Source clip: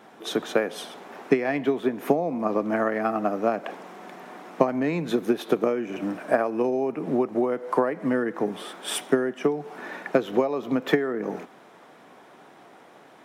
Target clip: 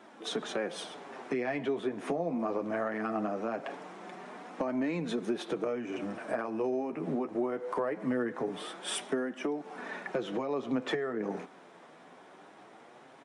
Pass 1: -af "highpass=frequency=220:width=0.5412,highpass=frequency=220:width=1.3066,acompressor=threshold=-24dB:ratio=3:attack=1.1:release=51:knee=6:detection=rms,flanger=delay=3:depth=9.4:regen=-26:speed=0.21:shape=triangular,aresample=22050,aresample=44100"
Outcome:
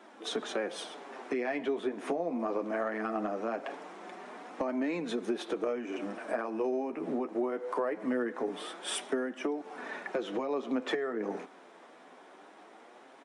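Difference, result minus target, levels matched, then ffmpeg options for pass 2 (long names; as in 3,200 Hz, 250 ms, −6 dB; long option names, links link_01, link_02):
125 Hz band −8.0 dB
-af "highpass=frequency=93:width=0.5412,highpass=frequency=93:width=1.3066,acompressor=threshold=-24dB:ratio=3:attack=1.1:release=51:knee=6:detection=rms,flanger=delay=3:depth=9.4:regen=-26:speed=0.21:shape=triangular,aresample=22050,aresample=44100"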